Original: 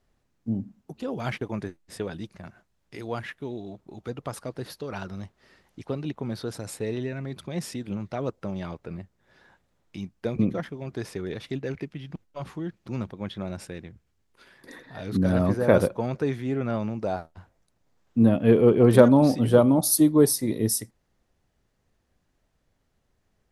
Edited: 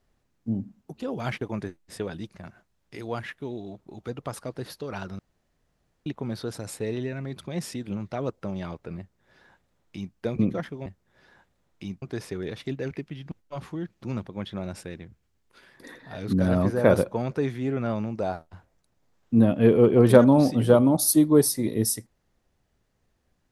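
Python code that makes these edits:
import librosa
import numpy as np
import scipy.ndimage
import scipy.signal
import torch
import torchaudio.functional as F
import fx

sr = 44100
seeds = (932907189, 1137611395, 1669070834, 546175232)

y = fx.edit(x, sr, fx.room_tone_fill(start_s=5.19, length_s=0.87),
    fx.duplicate(start_s=8.99, length_s=1.16, to_s=10.86), tone=tone)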